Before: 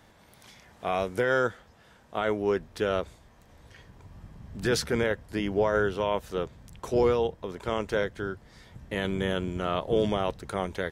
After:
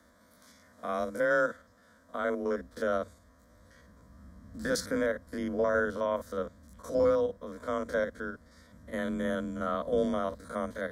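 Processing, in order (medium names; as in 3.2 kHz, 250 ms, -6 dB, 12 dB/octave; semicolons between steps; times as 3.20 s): spectrogram pixelated in time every 50 ms; static phaser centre 530 Hz, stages 8; frequency shift +26 Hz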